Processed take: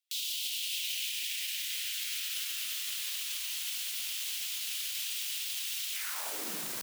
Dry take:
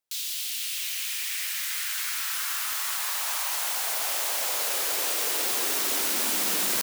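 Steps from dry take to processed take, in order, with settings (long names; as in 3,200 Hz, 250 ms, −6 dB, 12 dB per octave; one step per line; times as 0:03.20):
brickwall limiter −25 dBFS, peak gain reduction 10.5 dB
gate on every frequency bin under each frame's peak −25 dB strong
high-pass filter sweep 3,000 Hz → 90 Hz, 0:05.91–0:06.73
level −3 dB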